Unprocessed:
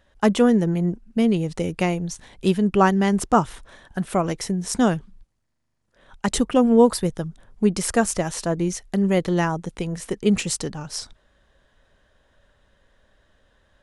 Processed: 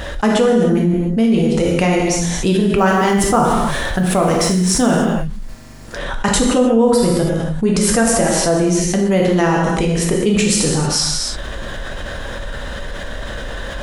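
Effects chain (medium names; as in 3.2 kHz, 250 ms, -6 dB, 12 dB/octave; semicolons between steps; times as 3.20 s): 2.78–4.96 s: companding laws mixed up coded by mu; gated-style reverb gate 330 ms falling, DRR -1 dB; level flattener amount 70%; trim -3.5 dB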